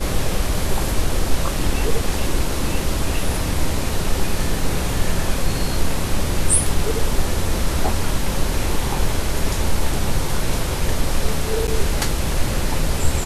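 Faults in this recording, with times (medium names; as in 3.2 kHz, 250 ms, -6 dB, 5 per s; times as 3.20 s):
11.67–11.68 s: dropout 9 ms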